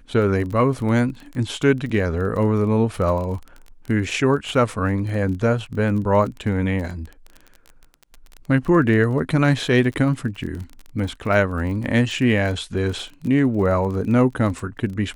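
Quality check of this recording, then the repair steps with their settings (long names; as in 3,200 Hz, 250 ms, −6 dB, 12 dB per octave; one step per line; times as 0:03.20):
surface crackle 24 per second −29 dBFS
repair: click removal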